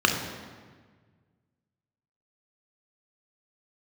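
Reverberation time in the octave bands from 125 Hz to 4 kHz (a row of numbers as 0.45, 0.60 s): 2.4, 1.9, 1.6, 1.5, 1.4, 1.1 s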